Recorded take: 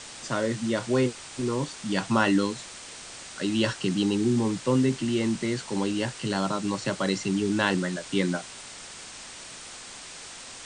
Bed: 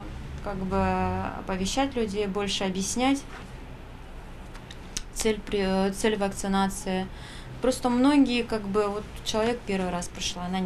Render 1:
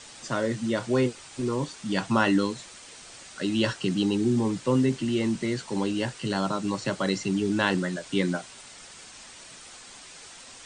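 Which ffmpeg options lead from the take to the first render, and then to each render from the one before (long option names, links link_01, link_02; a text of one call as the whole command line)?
ffmpeg -i in.wav -af "afftdn=noise_reduction=6:noise_floor=-43" out.wav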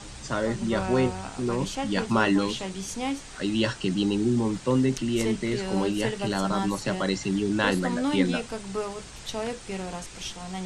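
ffmpeg -i in.wav -i bed.wav -filter_complex "[1:a]volume=-6dB[link_01];[0:a][link_01]amix=inputs=2:normalize=0" out.wav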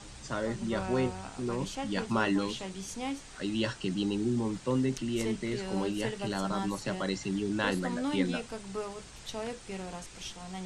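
ffmpeg -i in.wav -af "volume=-6dB" out.wav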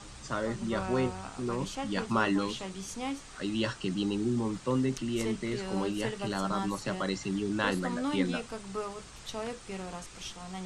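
ffmpeg -i in.wav -af "equalizer=frequency=1200:width=4.3:gain=5.5" out.wav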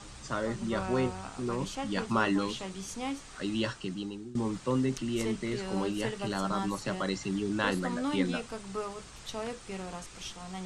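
ffmpeg -i in.wav -filter_complex "[0:a]asplit=2[link_01][link_02];[link_01]atrim=end=4.35,asetpts=PTS-STARTPTS,afade=type=out:start_time=3.57:duration=0.78:silence=0.112202[link_03];[link_02]atrim=start=4.35,asetpts=PTS-STARTPTS,afade=type=in:duration=0.004:curve=hsin:silence=0.112202[link_04];[link_03][link_04]concat=n=2:v=0:a=1" out.wav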